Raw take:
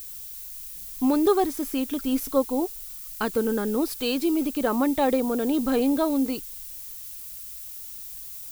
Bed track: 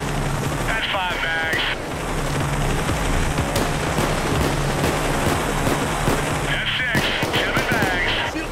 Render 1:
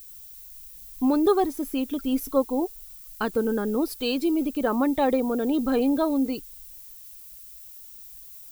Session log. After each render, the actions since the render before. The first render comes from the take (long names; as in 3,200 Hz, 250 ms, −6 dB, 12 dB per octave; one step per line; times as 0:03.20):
broadband denoise 8 dB, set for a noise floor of −39 dBFS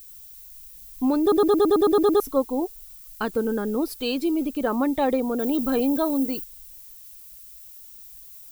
0:01.21: stutter in place 0.11 s, 9 plays
0:05.39–0:06.44: high-shelf EQ 11,000 Hz +11.5 dB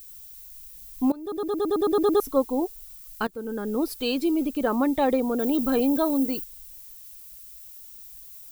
0:01.12–0:02.38: fade in, from −21 dB
0:03.27–0:03.85: fade in, from −19 dB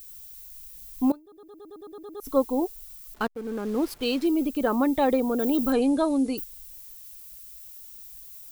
0:01.14–0:02.27: duck −20.5 dB, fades 0.31 s exponential
0:03.14–0:04.27: slack as between gear wheels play −34.5 dBFS
0:05.72–0:06.38: linear-phase brick-wall low-pass 11,000 Hz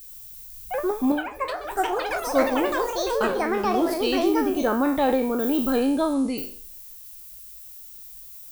peak hold with a decay on every bin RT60 0.50 s
delay with pitch and tempo change per echo 116 ms, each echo +6 semitones, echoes 3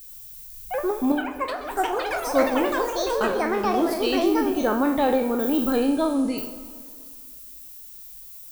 dense smooth reverb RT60 2.2 s, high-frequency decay 0.8×, DRR 11.5 dB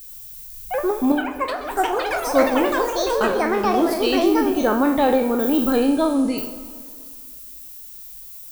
level +3.5 dB